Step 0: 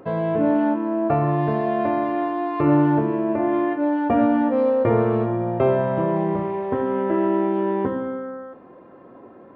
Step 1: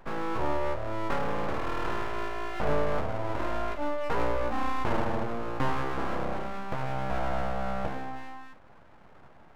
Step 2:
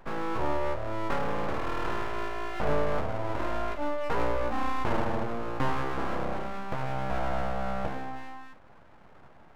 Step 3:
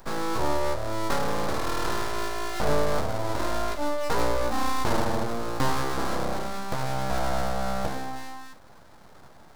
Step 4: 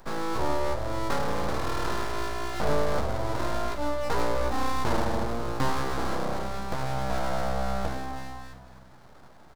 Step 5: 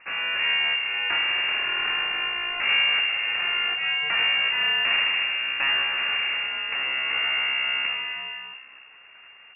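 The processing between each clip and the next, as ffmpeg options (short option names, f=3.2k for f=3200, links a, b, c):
-af "aeval=exprs='abs(val(0))':c=same,volume=-6.5dB"
-af anull
-af "aexciter=amount=3.2:drive=7.6:freq=3.8k,volume=3dB"
-filter_complex "[0:a]highshelf=f=5.7k:g=-5,asplit=2[a][b];[b]asplit=4[c][d][e][f];[c]adelay=252,afreqshift=-64,volume=-14dB[g];[d]adelay=504,afreqshift=-128,volume=-22.2dB[h];[e]adelay=756,afreqshift=-192,volume=-30.4dB[i];[f]adelay=1008,afreqshift=-256,volume=-38.5dB[j];[g][h][i][j]amix=inputs=4:normalize=0[k];[a][k]amix=inputs=2:normalize=0,volume=-1.5dB"
-af "highshelf=f=2.2k:g=11.5,lowpass=f=2.4k:t=q:w=0.5098,lowpass=f=2.4k:t=q:w=0.6013,lowpass=f=2.4k:t=q:w=0.9,lowpass=f=2.4k:t=q:w=2.563,afreqshift=-2800"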